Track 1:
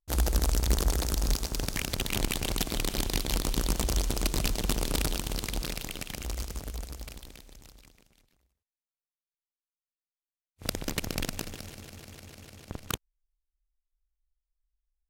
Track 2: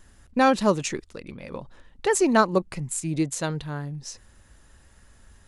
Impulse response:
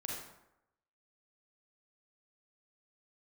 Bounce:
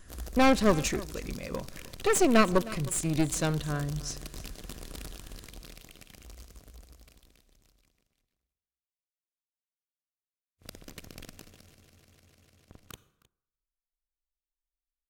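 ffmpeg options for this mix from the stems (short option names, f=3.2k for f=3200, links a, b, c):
-filter_complex "[0:a]volume=-15dB,asplit=3[a][b][c];[b]volume=-14.5dB[d];[c]volume=-19.5dB[e];[1:a]aeval=exprs='clip(val(0),-1,0.0316)':c=same,volume=0dB,asplit=3[f][g][h];[g]volume=-22.5dB[i];[h]volume=-18.5dB[j];[2:a]atrim=start_sample=2205[k];[d][i]amix=inputs=2:normalize=0[l];[l][k]afir=irnorm=-1:irlink=0[m];[e][j]amix=inputs=2:normalize=0,aecho=0:1:312:1[n];[a][f][m][n]amix=inputs=4:normalize=0,asuperstop=centerf=870:order=4:qfactor=7.7"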